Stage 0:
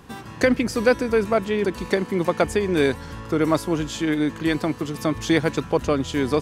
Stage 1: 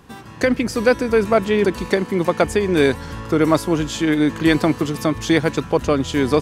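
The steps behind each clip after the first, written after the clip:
automatic gain control
level −1 dB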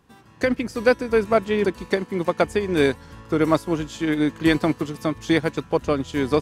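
expander for the loud parts 1.5 to 1, over −32 dBFS
level −1.5 dB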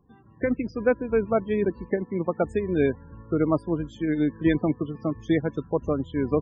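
low-shelf EQ 480 Hz +7 dB
spectral peaks only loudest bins 32
level −7.5 dB

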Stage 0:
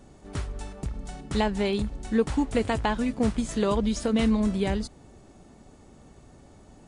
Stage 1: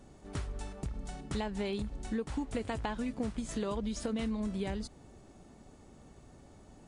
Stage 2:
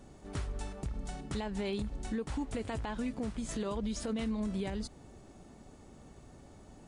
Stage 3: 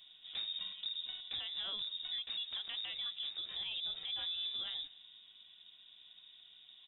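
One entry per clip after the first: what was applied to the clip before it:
downward compressor 5 to 1, threshold −28 dBFS, peak gain reduction 10 dB; level −4 dB
brickwall limiter −29 dBFS, peak gain reduction 7.5 dB; level +1.5 dB
slap from a distant wall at 32 metres, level −21 dB; voice inversion scrambler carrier 3,700 Hz; level −6 dB

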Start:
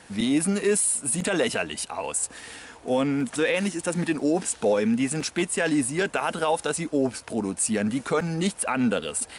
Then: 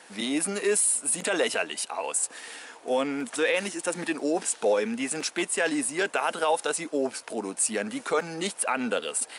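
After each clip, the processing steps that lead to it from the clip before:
high-pass filter 370 Hz 12 dB per octave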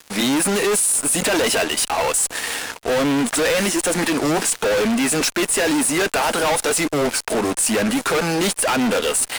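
fuzz pedal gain 38 dB, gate −45 dBFS
level −3.5 dB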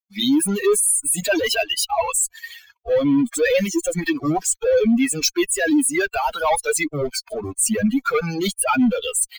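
spectral dynamics exaggerated over time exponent 3
level +6.5 dB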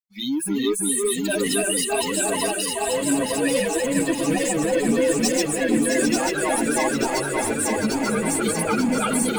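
feedback delay that plays each chunk backwards 444 ms, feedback 78%, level −1.5 dB
delay that swaps between a low-pass and a high-pass 332 ms, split 2,400 Hz, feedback 61%, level −2.5 dB
level −7.5 dB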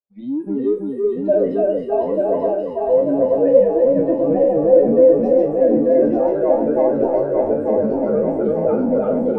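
peak hold with a decay on every bin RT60 0.37 s
low-pass with resonance 570 Hz, resonance Q 4.9
level −1 dB

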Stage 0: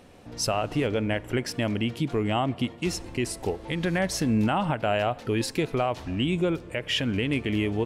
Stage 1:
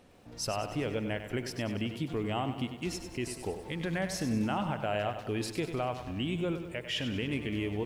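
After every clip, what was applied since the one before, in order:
feedback echo at a low word length 97 ms, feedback 55%, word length 9 bits, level −9.5 dB
level −7.5 dB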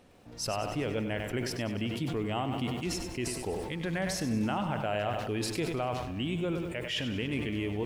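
level that may fall only so fast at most 36 dB per second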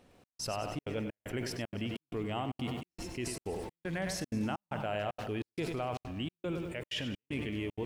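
gate pattern "xxx..xxxxx." 191 BPM −60 dB
level −3.5 dB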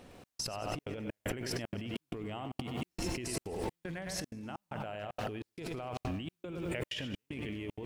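compressor whose output falls as the input rises −42 dBFS, ratio −1
level +3 dB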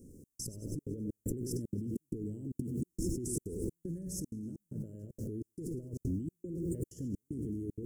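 inverse Chebyshev band-stop filter 700–4,000 Hz, stop band 40 dB
level +3 dB

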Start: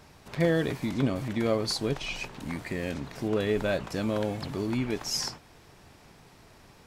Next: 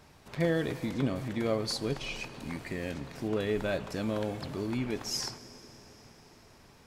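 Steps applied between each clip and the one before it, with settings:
dense smooth reverb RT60 5 s, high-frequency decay 0.9×, DRR 14 dB
level −3.5 dB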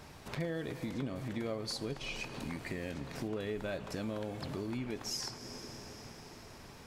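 downward compressor 3 to 1, threshold −44 dBFS, peak gain reduction 15.5 dB
level +5 dB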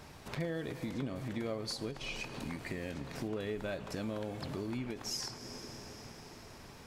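every ending faded ahead of time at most 150 dB per second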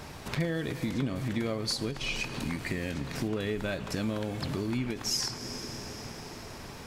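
dynamic equaliser 610 Hz, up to −5 dB, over −52 dBFS, Q 0.77
level +8.5 dB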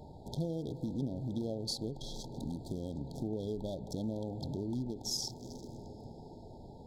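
adaptive Wiener filter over 15 samples
linear-phase brick-wall band-stop 950–3,200 Hz
level −5 dB

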